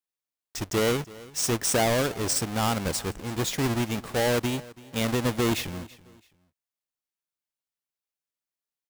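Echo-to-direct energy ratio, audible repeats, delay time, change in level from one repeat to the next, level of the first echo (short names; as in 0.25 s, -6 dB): -20.0 dB, 2, 0.331 s, -11.0 dB, -20.5 dB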